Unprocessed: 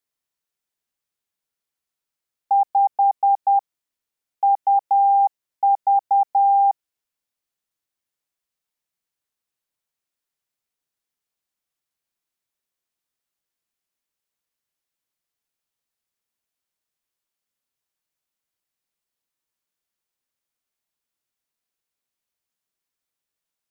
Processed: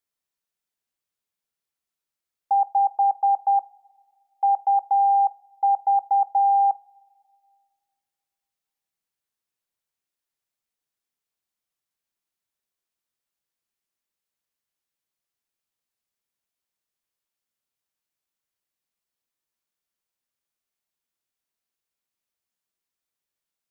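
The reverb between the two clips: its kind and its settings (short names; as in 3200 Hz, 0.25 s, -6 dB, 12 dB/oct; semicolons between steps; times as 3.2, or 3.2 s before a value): two-slope reverb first 0.29 s, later 2.1 s, from -20 dB, DRR 14.5 dB; gain -2.5 dB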